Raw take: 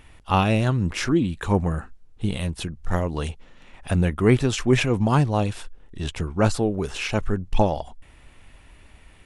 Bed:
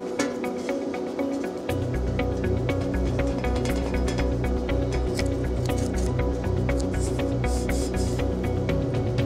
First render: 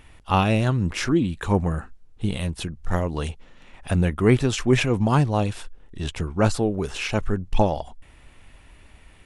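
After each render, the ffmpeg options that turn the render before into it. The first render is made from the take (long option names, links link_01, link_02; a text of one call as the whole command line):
ffmpeg -i in.wav -af anull out.wav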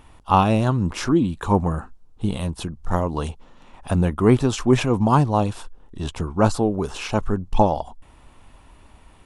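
ffmpeg -i in.wav -af "equalizer=frequency=250:width_type=o:width=1:gain=3,equalizer=frequency=1000:width_type=o:width=1:gain=8,equalizer=frequency=2000:width_type=o:width=1:gain=-7" out.wav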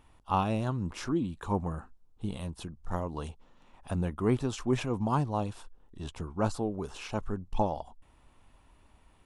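ffmpeg -i in.wav -af "volume=-11.5dB" out.wav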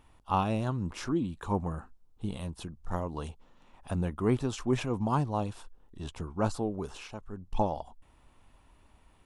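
ffmpeg -i in.wav -filter_complex "[0:a]asplit=3[link_01][link_02][link_03];[link_01]atrim=end=7.19,asetpts=PTS-STARTPTS,afade=type=out:start_time=6.92:duration=0.27:silence=0.266073[link_04];[link_02]atrim=start=7.19:end=7.27,asetpts=PTS-STARTPTS,volume=-11.5dB[link_05];[link_03]atrim=start=7.27,asetpts=PTS-STARTPTS,afade=type=in:duration=0.27:silence=0.266073[link_06];[link_04][link_05][link_06]concat=n=3:v=0:a=1" out.wav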